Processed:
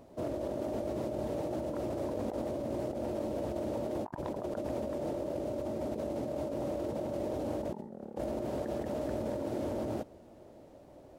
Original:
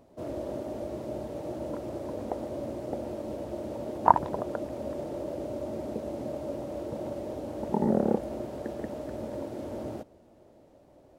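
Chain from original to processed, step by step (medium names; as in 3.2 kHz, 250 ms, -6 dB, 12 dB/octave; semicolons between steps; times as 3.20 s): compressor with a negative ratio -37 dBFS, ratio -1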